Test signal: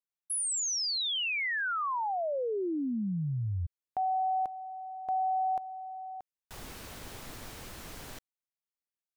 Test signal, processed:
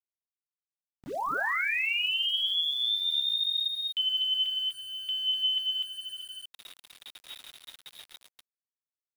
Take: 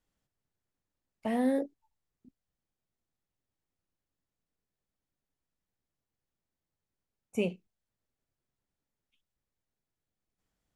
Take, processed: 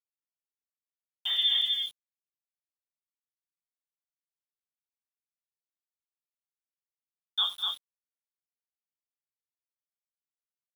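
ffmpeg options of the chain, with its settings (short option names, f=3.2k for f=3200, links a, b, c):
-af "lowpass=f=3.2k:t=q:w=0.5098,lowpass=f=3.2k:t=q:w=0.6013,lowpass=f=3.2k:t=q:w=0.9,lowpass=f=3.2k:t=q:w=2.563,afreqshift=-3800,anlmdn=0.0251,equalizer=f=95:w=3.5:g=-12.5,bandreject=f=60:t=h:w=6,bandreject=f=120:t=h:w=6,bandreject=f=180:t=h:w=6,bandreject=f=240:t=h:w=6,acontrast=33,agate=range=-29dB:threshold=-40dB:ratio=3:release=34:detection=rms,flanger=delay=4:depth=7.5:regen=46:speed=0.2:shape=sinusoidal,aecho=1:1:80|202|240|247:0.141|0.158|0.106|0.668,aeval=exprs='val(0)*gte(abs(val(0)),0.00631)':c=same"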